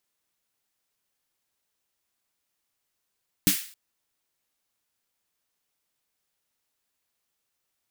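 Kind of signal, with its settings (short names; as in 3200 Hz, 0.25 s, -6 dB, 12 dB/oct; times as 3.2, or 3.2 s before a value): snare drum length 0.27 s, tones 190 Hz, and 290 Hz, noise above 1700 Hz, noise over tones -1.5 dB, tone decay 0.12 s, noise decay 0.46 s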